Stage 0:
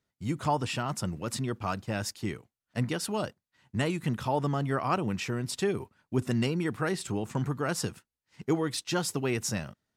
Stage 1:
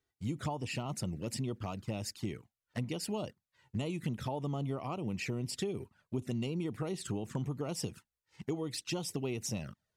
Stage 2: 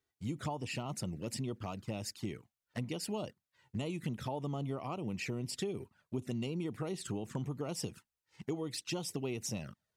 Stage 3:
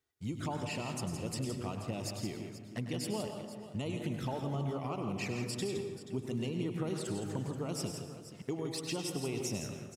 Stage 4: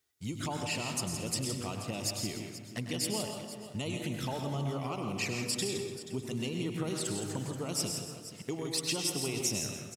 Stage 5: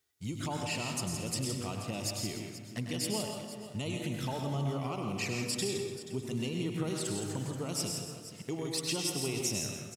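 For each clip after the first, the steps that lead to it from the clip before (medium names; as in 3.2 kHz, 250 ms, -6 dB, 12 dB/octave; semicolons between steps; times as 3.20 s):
compression 10:1, threshold -31 dBFS, peak gain reduction 10 dB; touch-sensitive flanger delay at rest 2.6 ms, full sweep at -31.5 dBFS
bass shelf 74 Hz -6 dB; trim -1 dB
multi-tap echo 100/166/481 ms -10.5/-8/-14 dB; plate-style reverb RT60 1.4 s, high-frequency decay 0.45×, pre-delay 100 ms, DRR 7 dB
treble shelf 2.2 kHz +9.5 dB; delay 129 ms -10.5 dB
harmonic-percussive split harmonic +4 dB; trim -2.5 dB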